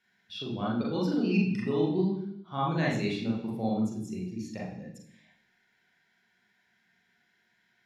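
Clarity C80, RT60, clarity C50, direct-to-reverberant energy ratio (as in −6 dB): 7.5 dB, 0.70 s, 4.0 dB, −4.0 dB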